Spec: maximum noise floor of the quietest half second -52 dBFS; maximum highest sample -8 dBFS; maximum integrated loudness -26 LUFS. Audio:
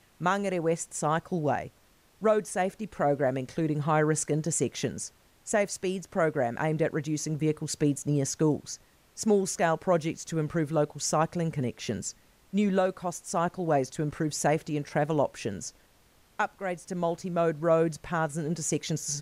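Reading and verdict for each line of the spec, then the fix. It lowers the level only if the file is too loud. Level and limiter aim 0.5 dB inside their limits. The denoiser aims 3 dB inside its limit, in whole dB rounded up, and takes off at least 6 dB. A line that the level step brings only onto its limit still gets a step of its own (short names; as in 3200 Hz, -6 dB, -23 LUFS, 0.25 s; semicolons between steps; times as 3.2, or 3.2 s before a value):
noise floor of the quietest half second -62 dBFS: OK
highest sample -13.5 dBFS: OK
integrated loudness -29.0 LUFS: OK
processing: none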